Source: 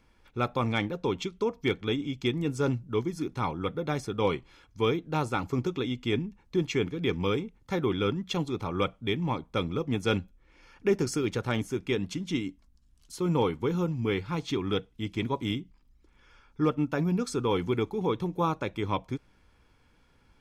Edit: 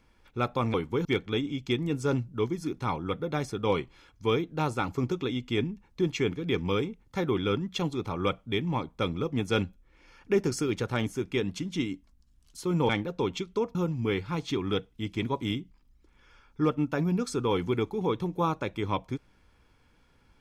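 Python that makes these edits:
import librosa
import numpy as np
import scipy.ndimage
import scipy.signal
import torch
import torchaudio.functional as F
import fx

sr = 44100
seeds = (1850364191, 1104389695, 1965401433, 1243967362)

y = fx.edit(x, sr, fx.swap(start_s=0.74, length_s=0.86, other_s=13.44, other_length_s=0.31), tone=tone)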